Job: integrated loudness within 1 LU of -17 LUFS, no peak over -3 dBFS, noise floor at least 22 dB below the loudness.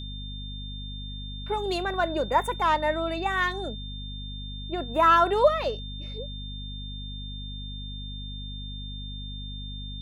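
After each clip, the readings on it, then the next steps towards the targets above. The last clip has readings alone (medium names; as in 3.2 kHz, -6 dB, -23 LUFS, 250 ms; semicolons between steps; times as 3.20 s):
hum 50 Hz; highest harmonic 250 Hz; hum level -35 dBFS; steady tone 3.6 kHz; tone level -40 dBFS; loudness -28.5 LUFS; peak level -9.5 dBFS; loudness target -17.0 LUFS
-> hum notches 50/100/150/200/250 Hz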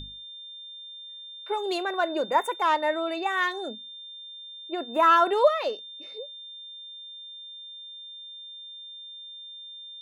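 hum not found; steady tone 3.6 kHz; tone level -40 dBFS
-> band-stop 3.6 kHz, Q 30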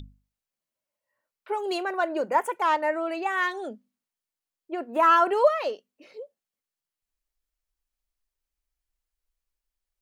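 steady tone not found; loudness -24.5 LUFS; peak level -9.5 dBFS; loudness target -17.0 LUFS
-> trim +7.5 dB; peak limiter -3 dBFS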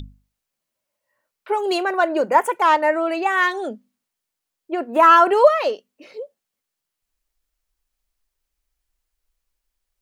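loudness -17.5 LUFS; peak level -3.0 dBFS; noise floor -82 dBFS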